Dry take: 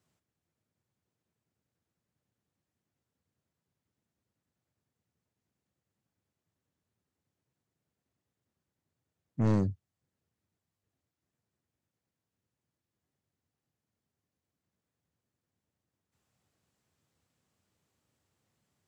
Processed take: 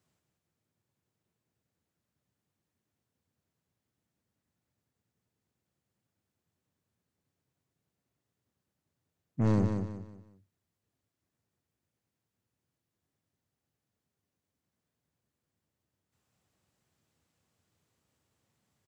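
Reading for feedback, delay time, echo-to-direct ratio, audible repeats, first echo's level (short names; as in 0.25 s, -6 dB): 34%, 0.184 s, -5.5 dB, 4, -6.0 dB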